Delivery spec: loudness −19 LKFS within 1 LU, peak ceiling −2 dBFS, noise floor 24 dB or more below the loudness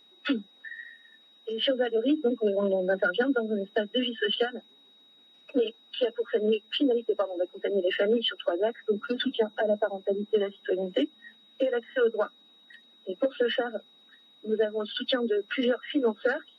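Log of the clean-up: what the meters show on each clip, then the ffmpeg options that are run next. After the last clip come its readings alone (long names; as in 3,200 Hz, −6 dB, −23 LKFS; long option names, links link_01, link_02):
interfering tone 3,800 Hz; level of the tone −56 dBFS; integrated loudness −28.5 LKFS; sample peak −14.0 dBFS; target loudness −19.0 LKFS
→ -af "bandreject=frequency=3800:width=30"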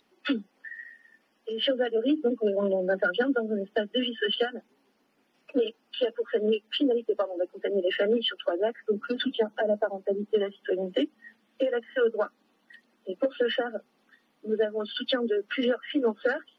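interfering tone none found; integrated loudness −28.5 LKFS; sample peak −14.0 dBFS; target loudness −19.0 LKFS
→ -af "volume=9.5dB"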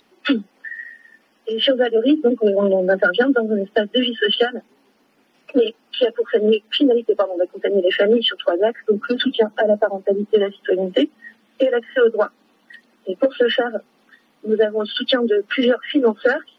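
integrated loudness −19.0 LKFS; sample peak −4.5 dBFS; background noise floor −60 dBFS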